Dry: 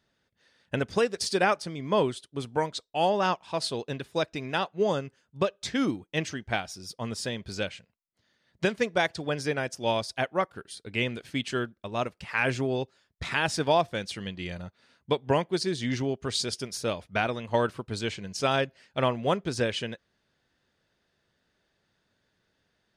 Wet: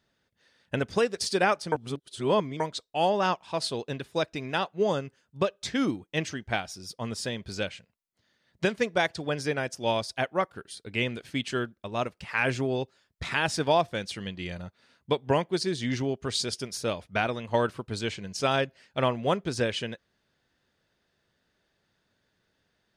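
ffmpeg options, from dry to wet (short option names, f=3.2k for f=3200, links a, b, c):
-filter_complex "[0:a]asplit=3[a][b][c];[a]atrim=end=1.722[d];[b]atrim=start=1.718:end=2.602,asetpts=PTS-STARTPTS,areverse[e];[c]atrim=start=2.598[f];[d][e]acrossfade=d=0.004:c1=hsin:c2=hsin[g];[g][f]acrossfade=d=0.004:c1=hsin:c2=hsin"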